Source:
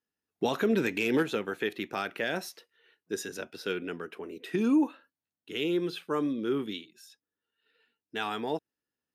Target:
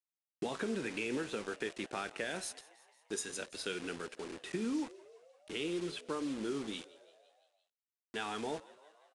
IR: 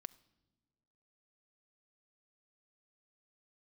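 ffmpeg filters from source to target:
-filter_complex "[0:a]asettb=1/sr,asplit=3[link_01][link_02][link_03];[link_01]atrim=end=2.304[link_04];[link_02]atrim=start=2.3:end=4.04,asetpts=PTS-STARTPTS,afade=type=in:duration=0.004:curve=qsin,afade=type=out:start_time=1.736:duration=0.004:curve=qsin,aemphasis=mode=production:type=75fm[link_05];[link_03]atrim=start=4.036[link_06];[link_04][link_05]acrossfade=duration=0.004:curve1=hsin:curve2=qsin[link_07];[link_07][link_06]acrossfade=duration=0.004:curve1=qsin:curve2=hsin,anlmdn=0.00158,equalizer=frequency=66:width_type=o:width=0.6:gain=-5,bandreject=frequency=5600:width=6.7,acompressor=threshold=-31dB:ratio=4,flanger=delay=9.8:depth=5.7:regen=-79:speed=0.48:shape=triangular,acrusher=bits=7:mix=0:aa=0.000001,asplit=6[link_08][link_09][link_10][link_11][link_12][link_13];[link_09]adelay=171,afreqshift=74,volume=-20.5dB[link_14];[link_10]adelay=342,afreqshift=148,volume=-24.7dB[link_15];[link_11]adelay=513,afreqshift=222,volume=-28.8dB[link_16];[link_12]adelay=684,afreqshift=296,volume=-33dB[link_17];[link_13]adelay=855,afreqshift=370,volume=-37.1dB[link_18];[link_08][link_14][link_15][link_16][link_17][link_18]amix=inputs=6:normalize=0,aresample=22050,aresample=44100,volume=1dB"

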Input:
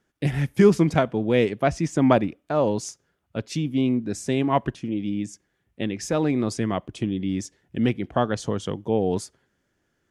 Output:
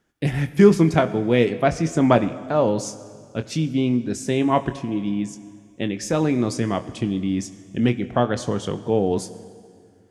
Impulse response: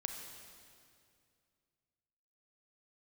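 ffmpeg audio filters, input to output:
-filter_complex "[0:a]asplit=2[link_01][link_02];[1:a]atrim=start_sample=2205,asetrate=48510,aresample=44100,adelay=25[link_03];[link_02][link_03]afir=irnorm=-1:irlink=0,volume=-8.5dB[link_04];[link_01][link_04]amix=inputs=2:normalize=0,volume=2dB"

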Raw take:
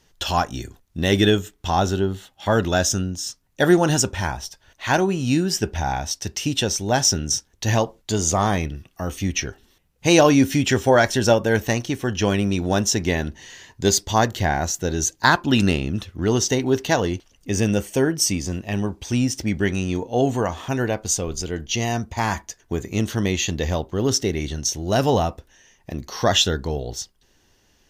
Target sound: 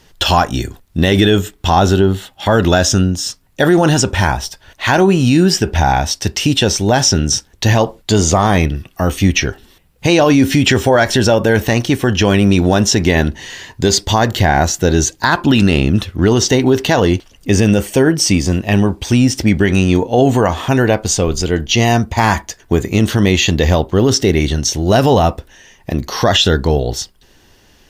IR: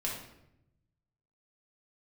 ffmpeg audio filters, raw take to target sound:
-filter_complex "[0:a]equalizer=frequency=6200:width_type=o:width=0.35:gain=-5,acrossover=split=6900[link_01][link_02];[link_02]acompressor=threshold=-40dB:ratio=4:attack=1:release=60[link_03];[link_01][link_03]amix=inputs=2:normalize=0,alimiter=level_in=13dB:limit=-1dB:release=50:level=0:latency=1,volume=-1dB"

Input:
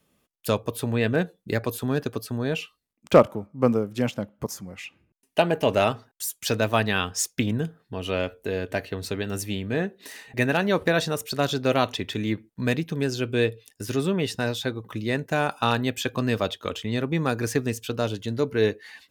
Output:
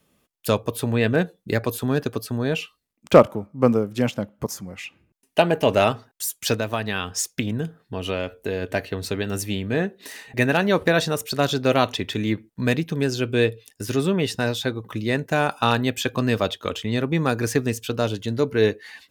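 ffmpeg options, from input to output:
ffmpeg -i in.wav -filter_complex "[0:a]asplit=3[link_01][link_02][link_03];[link_01]afade=type=out:start_time=6.54:duration=0.02[link_04];[link_02]acompressor=threshold=-24dB:ratio=6,afade=type=in:start_time=6.54:duration=0.02,afade=type=out:start_time=8.61:duration=0.02[link_05];[link_03]afade=type=in:start_time=8.61:duration=0.02[link_06];[link_04][link_05][link_06]amix=inputs=3:normalize=0,volume=3dB" out.wav

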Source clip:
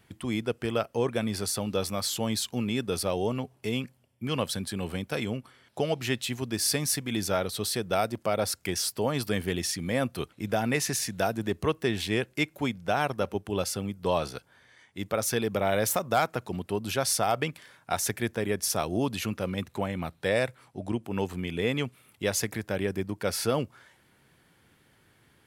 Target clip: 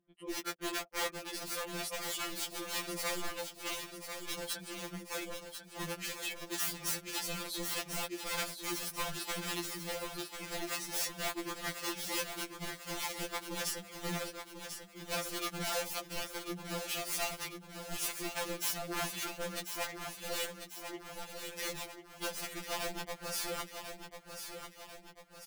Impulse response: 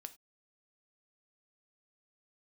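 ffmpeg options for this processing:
-filter_complex "[0:a]asetnsamples=nb_out_samples=441:pad=0,asendcmd='19.85 highpass f 580;21.74 highpass f 140',highpass=260,agate=range=-14dB:threshold=-60dB:ratio=16:detection=peak,anlmdn=0.631,alimiter=limit=-18dB:level=0:latency=1:release=210,acompressor=mode=upward:threshold=-50dB:ratio=2.5,aeval=exprs='(mod(17.8*val(0)+1,2)-1)/17.8':channel_layout=same,acrossover=split=490[link_01][link_02];[link_01]aeval=exprs='val(0)*(1-0.7/2+0.7/2*cos(2*PI*3.4*n/s))':channel_layout=same[link_03];[link_02]aeval=exprs='val(0)*(1-0.7/2-0.7/2*cos(2*PI*3.4*n/s))':channel_layout=same[link_04];[link_03][link_04]amix=inputs=2:normalize=0,aecho=1:1:1043|2086|3129|4172|5215|6258:0.398|0.203|0.104|0.0528|0.0269|0.0137,afftfilt=real='re*2.83*eq(mod(b,8),0)':imag='im*2.83*eq(mod(b,8),0)':win_size=2048:overlap=0.75"

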